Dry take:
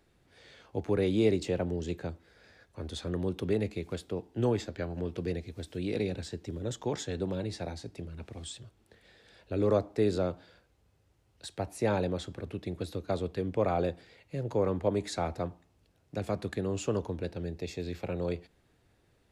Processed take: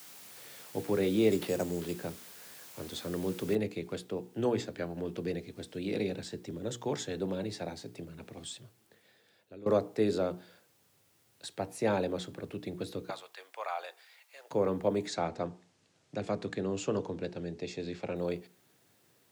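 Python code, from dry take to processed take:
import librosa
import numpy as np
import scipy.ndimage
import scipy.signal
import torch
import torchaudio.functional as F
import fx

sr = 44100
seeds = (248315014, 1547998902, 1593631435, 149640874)

y = fx.sample_hold(x, sr, seeds[0], rate_hz=7300.0, jitter_pct=0, at=(1.31, 1.95))
y = fx.noise_floor_step(y, sr, seeds[1], at_s=3.55, before_db=-51, after_db=-70, tilt_db=0.0)
y = fx.highpass(y, sr, hz=820.0, slope=24, at=(13.1, 14.51))
y = fx.lowpass(y, sr, hz=7900.0, slope=24, at=(15.07, 18.16))
y = fx.edit(y, sr, fx.fade_out_to(start_s=8.54, length_s=1.12, floor_db=-19.5), tone=tone)
y = scipy.signal.sosfilt(scipy.signal.butter(4, 120.0, 'highpass', fs=sr, output='sos'), y)
y = fx.hum_notches(y, sr, base_hz=60, count=8)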